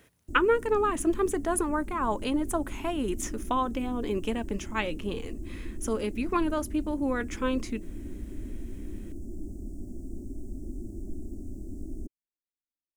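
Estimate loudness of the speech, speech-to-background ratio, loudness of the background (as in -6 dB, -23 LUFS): -29.5 LUFS, 12.5 dB, -42.0 LUFS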